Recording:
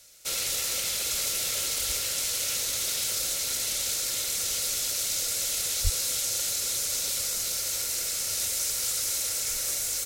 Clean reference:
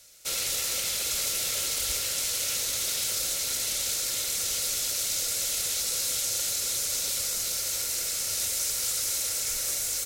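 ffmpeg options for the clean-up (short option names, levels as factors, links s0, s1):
-filter_complex "[0:a]asplit=3[s0][s1][s2];[s0]afade=t=out:st=5.83:d=0.02[s3];[s1]highpass=f=140:w=0.5412,highpass=f=140:w=1.3066,afade=t=in:st=5.83:d=0.02,afade=t=out:st=5.95:d=0.02[s4];[s2]afade=t=in:st=5.95:d=0.02[s5];[s3][s4][s5]amix=inputs=3:normalize=0"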